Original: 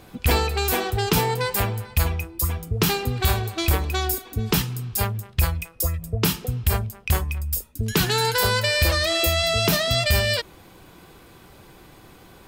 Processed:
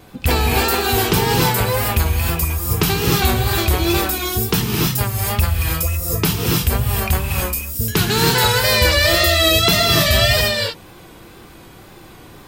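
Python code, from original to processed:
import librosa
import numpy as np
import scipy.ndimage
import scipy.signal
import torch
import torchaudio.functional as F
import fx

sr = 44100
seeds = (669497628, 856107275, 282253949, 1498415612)

y = fx.rev_gated(x, sr, seeds[0], gate_ms=340, shape='rising', drr_db=-2.0)
y = fx.wow_flutter(y, sr, seeds[1], rate_hz=2.1, depth_cents=57.0)
y = F.gain(torch.from_numpy(y), 2.5).numpy()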